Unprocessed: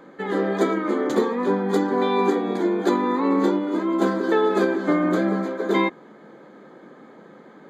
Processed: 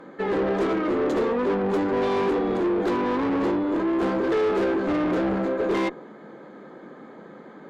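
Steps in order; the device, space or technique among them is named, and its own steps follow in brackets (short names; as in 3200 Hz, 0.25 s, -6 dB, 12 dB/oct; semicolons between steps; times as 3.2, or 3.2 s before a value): tube preamp driven hard (tube stage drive 27 dB, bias 0.2; high shelf 4900 Hz -8 dB); dynamic EQ 460 Hz, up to +5 dB, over -43 dBFS, Q 1; gain +3 dB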